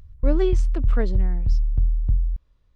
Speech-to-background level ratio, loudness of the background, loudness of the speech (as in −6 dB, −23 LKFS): −4.0 dB, −24.5 LKFS, −28.5 LKFS